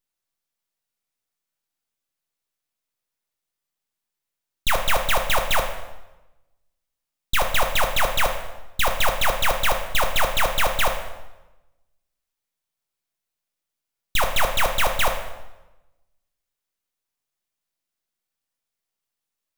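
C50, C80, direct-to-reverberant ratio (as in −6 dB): 7.5 dB, 9.5 dB, 3.5 dB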